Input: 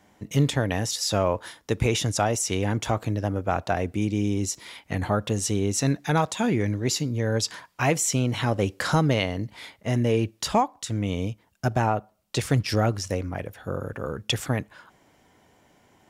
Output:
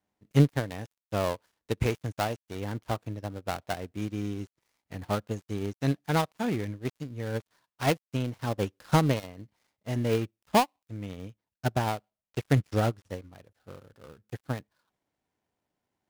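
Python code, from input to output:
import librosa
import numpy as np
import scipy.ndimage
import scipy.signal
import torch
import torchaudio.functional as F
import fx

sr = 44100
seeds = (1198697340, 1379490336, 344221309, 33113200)

y = fx.dead_time(x, sr, dead_ms=0.18)
y = fx.upward_expand(y, sr, threshold_db=-34.0, expansion=2.5)
y = y * librosa.db_to_amplitude(2.5)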